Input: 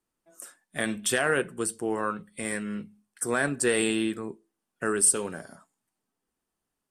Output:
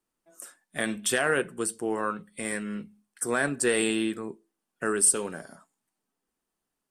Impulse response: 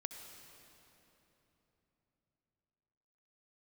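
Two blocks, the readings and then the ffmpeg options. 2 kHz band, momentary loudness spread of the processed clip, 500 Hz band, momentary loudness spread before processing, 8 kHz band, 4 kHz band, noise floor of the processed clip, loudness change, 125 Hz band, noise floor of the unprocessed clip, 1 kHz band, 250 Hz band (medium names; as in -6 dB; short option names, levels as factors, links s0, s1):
0.0 dB, 18 LU, 0.0 dB, 17 LU, 0.0 dB, 0.0 dB, -85 dBFS, 0.0 dB, -2.0 dB, -85 dBFS, 0.0 dB, -0.5 dB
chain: -af "equalizer=f=79:w=1.5:g=-8"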